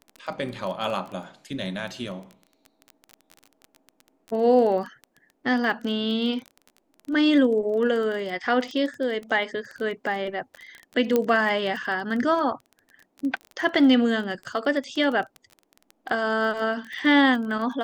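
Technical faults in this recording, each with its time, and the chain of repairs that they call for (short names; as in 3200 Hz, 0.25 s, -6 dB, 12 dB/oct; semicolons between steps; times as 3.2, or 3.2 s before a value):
crackle 20/s -31 dBFS
11.16 pop -9 dBFS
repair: de-click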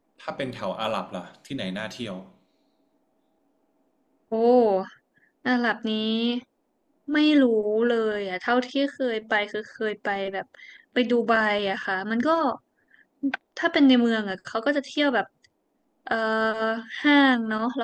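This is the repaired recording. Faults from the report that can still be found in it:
none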